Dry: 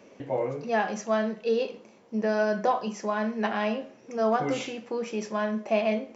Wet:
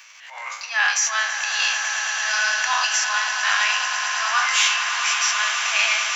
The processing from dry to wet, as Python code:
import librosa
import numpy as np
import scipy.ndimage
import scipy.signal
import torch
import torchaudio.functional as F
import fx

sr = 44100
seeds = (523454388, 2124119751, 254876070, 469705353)

p1 = fx.spec_trails(x, sr, decay_s=0.41)
p2 = fx.high_shelf(p1, sr, hz=2100.0, db=9.5)
p3 = fx.transient(p2, sr, attack_db=-8, sustain_db=8)
p4 = 10.0 ** (-20.5 / 20.0) * np.tanh(p3 / 10.0 ** (-20.5 / 20.0))
p5 = p3 + (p4 * librosa.db_to_amplitude(-12.0))
p6 = scipy.signal.sosfilt(scipy.signal.cheby2(4, 50, 450.0, 'highpass', fs=sr, output='sos'), p5)
p7 = p6 + fx.echo_swell(p6, sr, ms=110, loudest=8, wet_db=-11.5, dry=0)
y = p7 * librosa.db_to_amplitude(7.5)